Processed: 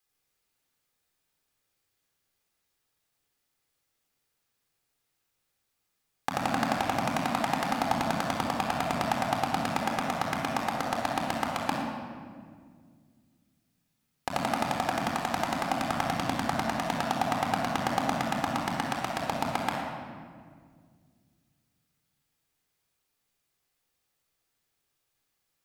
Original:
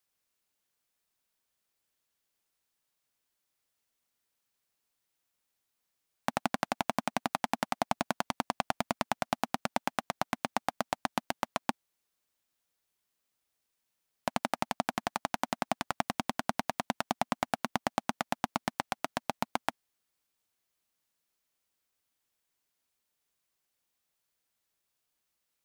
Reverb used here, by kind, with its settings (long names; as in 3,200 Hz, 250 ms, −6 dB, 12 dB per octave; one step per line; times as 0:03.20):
rectangular room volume 3,100 cubic metres, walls mixed, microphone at 3.9 metres
level −1 dB